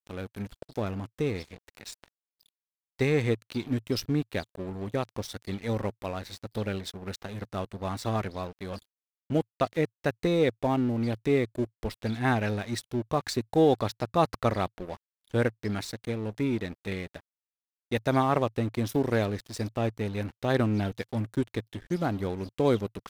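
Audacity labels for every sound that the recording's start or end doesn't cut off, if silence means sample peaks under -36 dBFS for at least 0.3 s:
2.990000	8.780000	sound
9.300000	14.950000	sound
15.340000	17.180000	sound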